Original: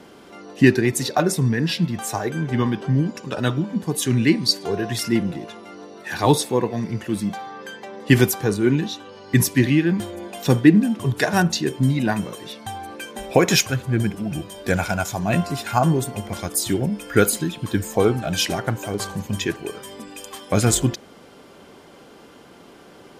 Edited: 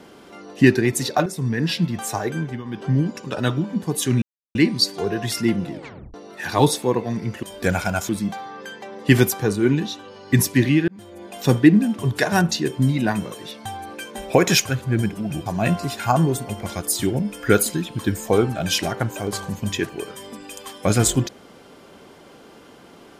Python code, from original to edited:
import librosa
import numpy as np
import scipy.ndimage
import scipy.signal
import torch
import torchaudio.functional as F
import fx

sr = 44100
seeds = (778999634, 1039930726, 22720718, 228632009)

y = fx.edit(x, sr, fx.fade_in_from(start_s=1.26, length_s=0.38, floor_db=-12.0),
    fx.fade_down_up(start_s=2.38, length_s=0.5, db=-15.5, fade_s=0.24),
    fx.insert_silence(at_s=4.22, length_s=0.33),
    fx.tape_stop(start_s=5.38, length_s=0.43),
    fx.fade_in_span(start_s=9.89, length_s=0.59),
    fx.move(start_s=14.47, length_s=0.66, to_s=7.1), tone=tone)